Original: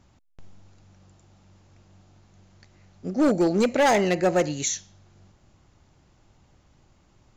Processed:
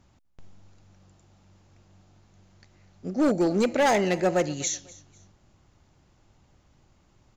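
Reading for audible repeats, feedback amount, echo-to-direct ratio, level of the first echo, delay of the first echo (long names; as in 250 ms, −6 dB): 2, 30%, −20.5 dB, −21.0 dB, 248 ms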